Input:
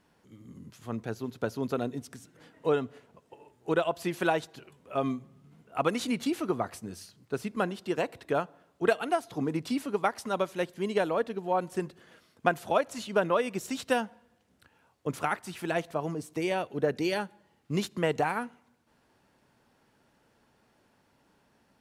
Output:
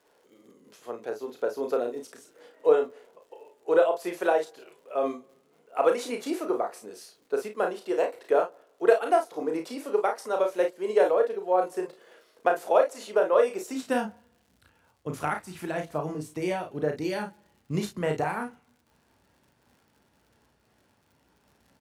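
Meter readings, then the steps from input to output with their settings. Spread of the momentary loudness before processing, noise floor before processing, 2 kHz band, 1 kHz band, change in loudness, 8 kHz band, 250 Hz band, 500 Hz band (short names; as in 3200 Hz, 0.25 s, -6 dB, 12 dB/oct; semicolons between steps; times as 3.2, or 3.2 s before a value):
13 LU, -68 dBFS, -1.0 dB, +2.5 dB, +3.5 dB, -0.5 dB, -1.5 dB, +5.5 dB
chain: on a send: early reflections 33 ms -5.5 dB, 52 ms -10 dB; on the sum: high-pass sweep 460 Hz -> 61 Hz, 13.65–14.22; dynamic EQ 3200 Hz, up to -5 dB, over -49 dBFS, Q 1.4; crackle 120/s -52 dBFS; noise-modulated level, depth 55%; gain +1.5 dB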